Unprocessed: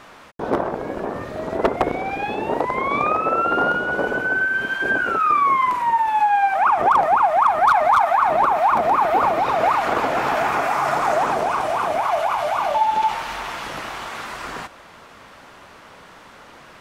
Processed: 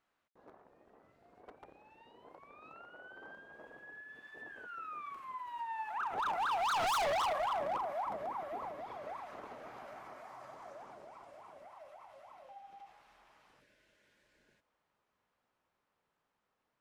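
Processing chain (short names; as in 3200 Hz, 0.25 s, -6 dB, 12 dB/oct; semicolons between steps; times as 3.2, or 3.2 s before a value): Doppler pass-by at 6.92, 34 m/s, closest 3.9 m; spectral repair 13.63–14.61, 650–1400 Hz after; overloaded stage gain 29 dB; gain -2 dB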